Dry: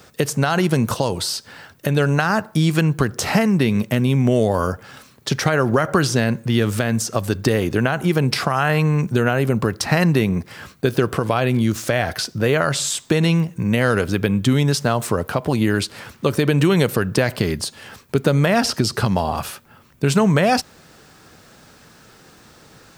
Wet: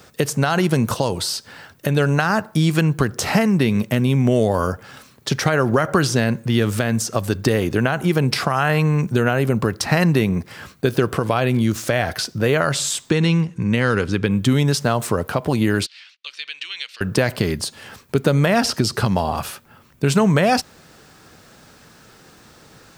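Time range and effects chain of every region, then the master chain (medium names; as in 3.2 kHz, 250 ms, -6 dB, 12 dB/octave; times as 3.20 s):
13.10–14.31 s: low-pass 7.3 kHz + peaking EQ 650 Hz -9 dB 0.37 oct
15.86–17.01 s: Butterworth band-pass 3.4 kHz, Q 1.3 + gate -55 dBFS, range -27 dB
whole clip: none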